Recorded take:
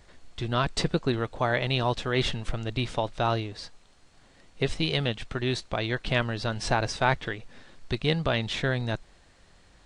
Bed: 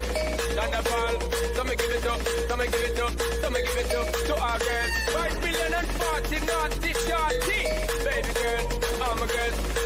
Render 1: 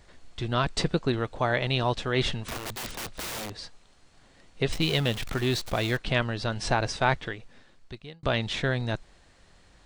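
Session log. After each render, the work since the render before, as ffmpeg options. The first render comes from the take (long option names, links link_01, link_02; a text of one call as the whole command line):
ffmpeg -i in.wav -filter_complex "[0:a]asettb=1/sr,asplit=3[link_01][link_02][link_03];[link_01]atrim=end=2.464[link_04];[link_02]atrim=start=2.46:end=3.5,asetpts=PTS-STARTPTS,afade=type=in:duration=0.004:curve=qsin,afade=type=out:start_time=1.036:duration=0.004:curve=qsin,aeval=exprs='(mod(31.6*val(0)+1,2)-1)/31.6':channel_layout=same[link_05];[link_03]atrim=start=3.496[link_06];[link_04][link_05]acrossfade=duration=0.004:curve1=hsin:curve2=qsin[link_07];[link_07][link_06]acrossfade=duration=0.004:curve1=qsin:curve2=hsin,asettb=1/sr,asplit=3[link_08][link_09][link_10];[link_08]atrim=end=4.724[link_11];[link_09]atrim=start=4.72:end=5.97,asetpts=PTS-STARTPTS,afade=type=in:duration=0.004:curve=qsin,afade=type=out:start_time=1.246:duration=0.004:curve=qsin,aeval=exprs='val(0)+0.5*0.0237*sgn(val(0))':channel_layout=same[link_12];[link_10]atrim=start=5.966[link_13];[link_11][link_12]acrossfade=duration=0.004:curve1=hsin:curve2=qsin[link_14];[link_14][link_13]acrossfade=duration=0.004:curve1=qsin:curve2=hsin,asplit=2[link_15][link_16];[link_15]atrim=end=8.23,asetpts=PTS-STARTPTS,afade=type=out:start_time=7.07:duration=1.16[link_17];[link_16]atrim=start=8.23,asetpts=PTS-STARTPTS,afade=type=in:duration=0.004:curve=hsin[link_18];[link_17][link_18]concat=n=2:v=0:a=1" out.wav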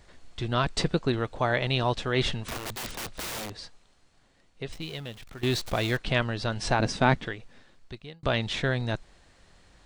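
ffmpeg -i in.wav -filter_complex "[0:a]asettb=1/sr,asplit=3[link_01][link_02][link_03];[link_01]atrim=end=6.794[link_04];[link_02]atrim=start=6.79:end=7.25,asetpts=PTS-STARTPTS,afade=type=in:duration=0.004:curve=qsin,afade=type=out:start_time=0.456:duration=0.004:curve=qsin,equalizer=frequency=220:width_type=o:width=1:gain=12.5[link_05];[link_03]atrim=start=7.246[link_06];[link_04][link_05]acrossfade=duration=0.004:curve1=hsin:curve2=qsin[link_07];[link_07][link_06]acrossfade=duration=0.004:curve1=qsin:curve2=hsin,asplit=2[link_08][link_09];[link_08]atrim=end=5.43,asetpts=PTS-STARTPTS,afade=type=out:start_time=3.38:duration=2.05:curve=qua:silence=0.211349[link_10];[link_09]atrim=start=5.43,asetpts=PTS-STARTPTS,afade=type=in:duration=0.004:curve=hsin:silence=0.211349[link_11];[link_10][link_11]concat=n=2:v=0:a=1" out.wav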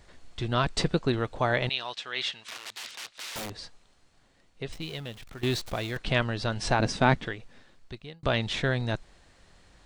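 ffmpeg -i in.wav -filter_complex "[0:a]asettb=1/sr,asplit=3[link_01][link_02][link_03];[link_01]atrim=end=1.694[link_04];[link_02]atrim=start=1.69:end=3.36,asetpts=PTS-STARTPTS,afade=type=in:duration=0.004:curve=qsin,afade=type=out:start_time=1.666:duration=0.004:curve=qsin,bandpass=frequency=3500:width_type=q:width=0.72[link_05];[link_03]atrim=start=3.356[link_06];[link_04][link_05]acrossfade=duration=0.004:curve1=hsin:curve2=qsin[link_07];[link_07][link_06]acrossfade=duration=0.004:curve1=qsin:curve2=hsin,asplit=2[link_08][link_09];[link_08]atrim=end=5.96,asetpts=PTS-STARTPTS,afade=type=out:start_time=5.36:duration=0.6:silence=0.421697[link_10];[link_09]atrim=start=5.96,asetpts=PTS-STARTPTS,afade=type=in:duration=0.004:curve=hsin:silence=0.421697[link_11];[link_10][link_11]concat=n=2:v=0:a=1" out.wav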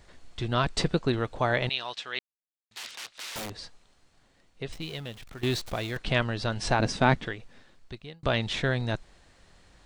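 ffmpeg -i in.wav -filter_complex "[0:a]asplit=3[link_01][link_02][link_03];[link_01]atrim=end=2.19,asetpts=PTS-STARTPTS,afade=type=out:start_time=2.186:duration=0.004:curve=hsin[link_04];[link_02]atrim=start=2.19:end=2.71,asetpts=PTS-STARTPTS,volume=0[link_05];[link_03]atrim=start=2.71,asetpts=PTS-STARTPTS,afade=type=in:duration=0.004:curve=hsin[link_06];[link_04][link_05][link_06]concat=n=3:v=0:a=1" out.wav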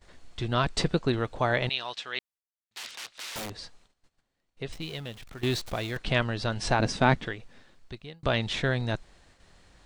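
ffmpeg -i in.wav -af "agate=range=-16dB:threshold=-58dB:ratio=16:detection=peak" out.wav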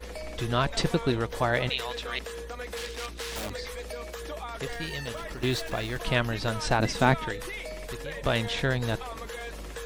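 ffmpeg -i in.wav -i bed.wav -filter_complex "[1:a]volume=-11.5dB[link_01];[0:a][link_01]amix=inputs=2:normalize=0" out.wav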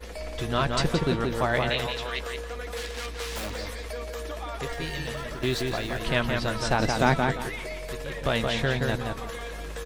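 ffmpeg -i in.wav -filter_complex "[0:a]asplit=2[link_01][link_02];[link_02]adelay=13,volume=-12dB[link_03];[link_01][link_03]amix=inputs=2:normalize=0,asplit=2[link_04][link_05];[link_05]adelay=173,lowpass=frequency=3400:poles=1,volume=-3.5dB,asplit=2[link_06][link_07];[link_07]adelay=173,lowpass=frequency=3400:poles=1,volume=0.25,asplit=2[link_08][link_09];[link_09]adelay=173,lowpass=frequency=3400:poles=1,volume=0.25,asplit=2[link_10][link_11];[link_11]adelay=173,lowpass=frequency=3400:poles=1,volume=0.25[link_12];[link_06][link_08][link_10][link_12]amix=inputs=4:normalize=0[link_13];[link_04][link_13]amix=inputs=2:normalize=0" out.wav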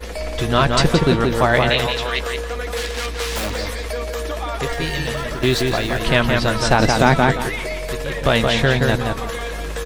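ffmpeg -i in.wav -af "volume=9.5dB,alimiter=limit=-2dB:level=0:latency=1" out.wav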